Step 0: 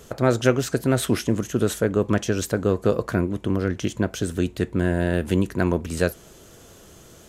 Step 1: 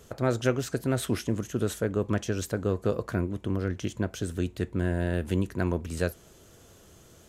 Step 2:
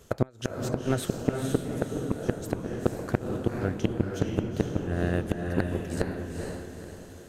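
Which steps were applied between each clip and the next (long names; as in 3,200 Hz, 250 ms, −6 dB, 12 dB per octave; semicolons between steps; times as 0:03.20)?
parametric band 87 Hz +4 dB 0.81 octaves; level −7 dB
transient designer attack +12 dB, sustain 0 dB; gate with flip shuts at −7 dBFS, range −30 dB; feedback delay with all-pass diffusion 475 ms, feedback 42%, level −3 dB; level −2.5 dB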